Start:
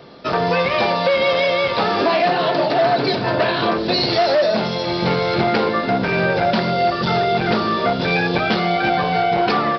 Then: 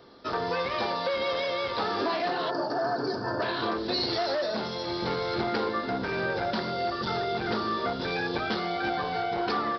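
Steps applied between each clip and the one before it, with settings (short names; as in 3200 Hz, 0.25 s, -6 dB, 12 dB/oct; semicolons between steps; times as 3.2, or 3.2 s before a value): fifteen-band EQ 160 Hz -11 dB, 630 Hz -6 dB, 2500 Hz -8 dB; spectral gain 2.5–3.42, 1800–4300 Hz -16 dB; gain -7.5 dB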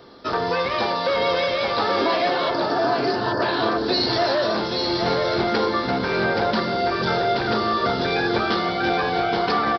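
echo 0.827 s -5 dB; gain +6.5 dB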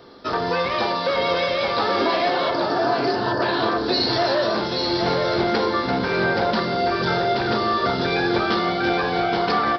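reverb RT60 0.40 s, pre-delay 31 ms, DRR 10.5 dB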